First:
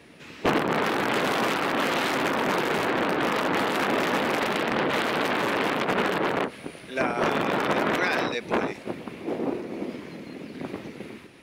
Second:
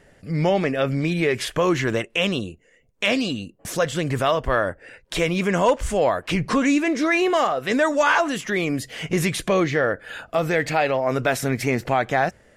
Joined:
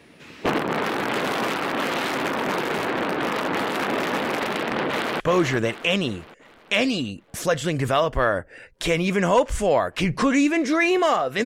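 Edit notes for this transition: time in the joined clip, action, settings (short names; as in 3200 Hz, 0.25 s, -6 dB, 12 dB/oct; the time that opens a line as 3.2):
first
4.87–5.2 echo throw 0.38 s, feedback 50%, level -8 dB
5.2 switch to second from 1.51 s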